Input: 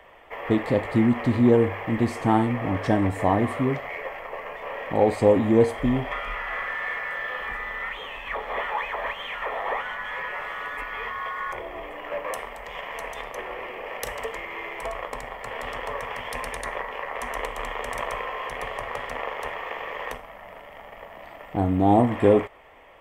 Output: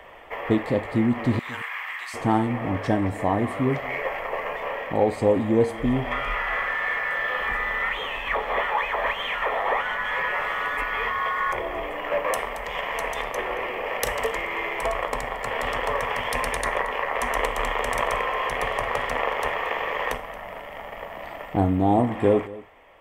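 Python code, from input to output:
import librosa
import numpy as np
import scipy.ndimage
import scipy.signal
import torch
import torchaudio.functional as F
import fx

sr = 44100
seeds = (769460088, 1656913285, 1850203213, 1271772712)

p1 = fx.highpass(x, sr, hz=1200.0, slope=24, at=(1.39, 2.14))
p2 = fx.rider(p1, sr, range_db=4, speed_s=0.5)
p3 = p2 + fx.echo_single(p2, sr, ms=226, db=-19.0, dry=0)
y = p3 * librosa.db_to_amplitude(2.0)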